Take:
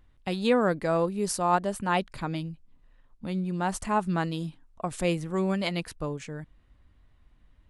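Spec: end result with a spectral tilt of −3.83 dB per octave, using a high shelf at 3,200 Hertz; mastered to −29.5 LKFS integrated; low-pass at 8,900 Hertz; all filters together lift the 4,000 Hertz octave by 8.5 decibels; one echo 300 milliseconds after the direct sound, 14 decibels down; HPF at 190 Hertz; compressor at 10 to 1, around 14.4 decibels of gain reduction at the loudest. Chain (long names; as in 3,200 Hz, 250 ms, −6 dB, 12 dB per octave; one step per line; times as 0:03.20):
high-pass filter 190 Hz
low-pass filter 8,900 Hz
high-shelf EQ 3,200 Hz +7 dB
parametric band 4,000 Hz +6 dB
downward compressor 10 to 1, threshold −32 dBFS
single-tap delay 300 ms −14 dB
level +7.5 dB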